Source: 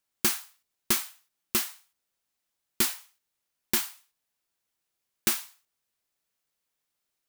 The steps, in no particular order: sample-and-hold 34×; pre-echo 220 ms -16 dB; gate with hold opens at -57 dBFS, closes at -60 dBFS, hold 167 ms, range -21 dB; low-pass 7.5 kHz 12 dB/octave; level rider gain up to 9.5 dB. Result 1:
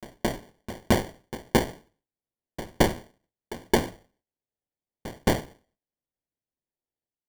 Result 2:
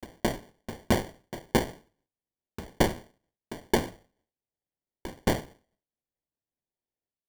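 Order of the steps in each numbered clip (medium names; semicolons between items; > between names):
low-pass > sample-and-hold > pre-echo > gate with hold > level rider; pre-echo > level rider > low-pass > sample-and-hold > gate with hold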